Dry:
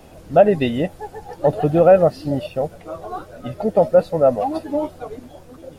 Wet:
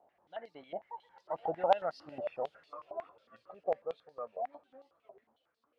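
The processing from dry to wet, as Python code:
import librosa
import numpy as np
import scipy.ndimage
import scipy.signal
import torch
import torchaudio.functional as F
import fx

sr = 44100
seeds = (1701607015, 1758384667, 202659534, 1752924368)

y = fx.doppler_pass(x, sr, speed_mps=35, closest_m=19.0, pass_at_s=2.16)
y = fx.high_shelf(y, sr, hz=2300.0, db=-10.0)
y = fx.echo_wet_highpass(y, sr, ms=413, feedback_pct=60, hz=2500.0, wet_db=-15.0)
y = fx.filter_held_bandpass(y, sr, hz=11.0, low_hz=710.0, high_hz=4400.0)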